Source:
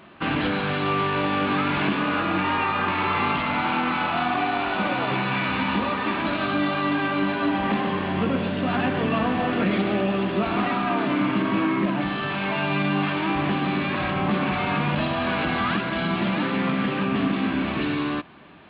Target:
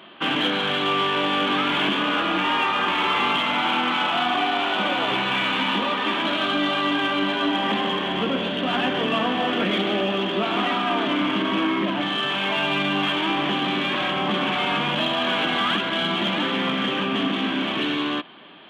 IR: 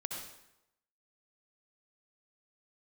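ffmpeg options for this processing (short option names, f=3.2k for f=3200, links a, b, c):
-filter_complex "[0:a]highpass=240,equalizer=f=3.2k:t=o:w=0.26:g=13.5,asplit=2[a][b];[b]asoftclip=type=hard:threshold=-26dB,volume=-11.5dB[c];[a][c]amix=inputs=2:normalize=0"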